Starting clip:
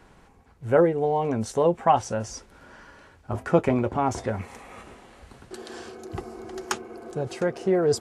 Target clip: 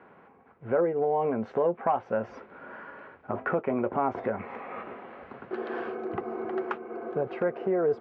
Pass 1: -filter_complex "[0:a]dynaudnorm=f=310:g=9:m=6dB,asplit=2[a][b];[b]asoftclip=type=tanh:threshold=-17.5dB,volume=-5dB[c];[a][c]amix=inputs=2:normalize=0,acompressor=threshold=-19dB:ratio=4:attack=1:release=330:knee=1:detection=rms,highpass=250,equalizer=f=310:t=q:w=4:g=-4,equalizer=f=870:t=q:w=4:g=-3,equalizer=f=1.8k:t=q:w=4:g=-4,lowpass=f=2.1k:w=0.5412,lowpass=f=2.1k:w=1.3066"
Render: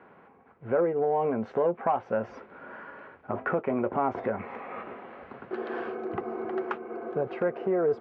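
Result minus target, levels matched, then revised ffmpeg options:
soft clip: distortion +7 dB
-filter_complex "[0:a]dynaudnorm=f=310:g=9:m=6dB,asplit=2[a][b];[b]asoftclip=type=tanh:threshold=-10dB,volume=-5dB[c];[a][c]amix=inputs=2:normalize=0,acompressor=threshold=-19dB:ratio=4:attack=1:release=330:knee=1:detection=rms,highpass=250,equalizer=f=310:t=q:w=4:g=-4,equalizer=f=870:t=q:w=4:g=-3,equalizer=f=1.8k:t=q:w=4:g=-4,lowpass=f=2.1k:w=0.5412,lowpass=f=2.1k:w=1.3066"

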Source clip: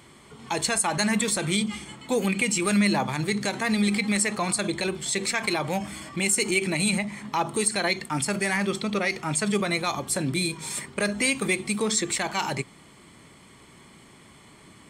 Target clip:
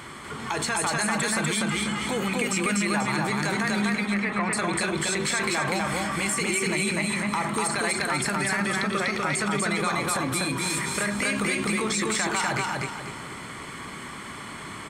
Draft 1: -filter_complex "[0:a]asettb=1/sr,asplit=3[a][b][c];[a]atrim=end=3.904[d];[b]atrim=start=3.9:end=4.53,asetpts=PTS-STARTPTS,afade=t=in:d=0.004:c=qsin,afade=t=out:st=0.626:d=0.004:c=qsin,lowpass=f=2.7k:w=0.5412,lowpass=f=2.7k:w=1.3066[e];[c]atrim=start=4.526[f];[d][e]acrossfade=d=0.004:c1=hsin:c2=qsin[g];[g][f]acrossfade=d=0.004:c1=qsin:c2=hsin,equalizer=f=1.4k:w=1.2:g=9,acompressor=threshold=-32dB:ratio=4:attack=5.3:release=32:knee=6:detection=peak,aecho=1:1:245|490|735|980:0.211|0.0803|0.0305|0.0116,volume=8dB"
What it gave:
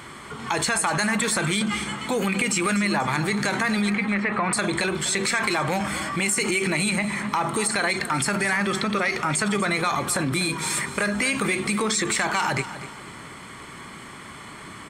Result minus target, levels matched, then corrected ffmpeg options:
echo-to-direct -12 dB; compressor: peak gain reduction -4.5 dB
-filter_complex "[0:a]asettb=1/sr,asplit=3[a][b][c];[a]atrim=end=3.904[d];[b]atrim=start=3.9:end=4.53,asetpts=PTS-STARTPTS,afade=t=in:d=0.004:c=qsin,afade=t=out:st=0.626:d=0.004:c=qsin,lowpass=f=2.7k:w=0.5412,lowpass=f=2.7k:w=1.3066[e];[c]atrim=start=4.526[f];[d][e]acrossfade=d=0.004:c1=hsin:c2=qsin[g];[g][f]acrossfade=d=0.004:c1=qsin:c2=hsin,equalizer=f=1.4k:w=1.2:g=9,acompressor=threshold=-38dB:ratio=4:attack=5.3:release=32:knee=6:detection=peak,aecho=1:1:245|490|735|980|1225:0.841|0.32|0.121|0.0462|0.0175,volume=8dB"

